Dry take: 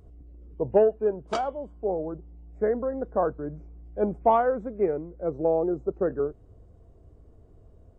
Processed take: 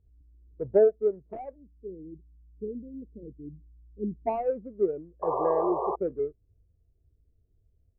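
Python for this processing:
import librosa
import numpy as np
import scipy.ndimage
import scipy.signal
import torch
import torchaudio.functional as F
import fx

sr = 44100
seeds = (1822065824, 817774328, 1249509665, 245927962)

y = scipy.ndimage.median_filter(x, 41, mode='constant')
y = fx.cheby2_bandstop(y, sr, low_hz=860.0, high_hz=2200.0, order=4, stop_db=60, at=(1.54, 4.26), fade=0.02)
y = fx.spec_paint(y, sr, seeds[0], shape='noise', start_s=5.22, length_s=0.74, low_hz=360.0, high_hz=1200.0, level_db=-24.0)
y = fx.air_absorb(y, sr, metres=480.0)
y = fx.spectral_expand(y, sr, expansion=1.5)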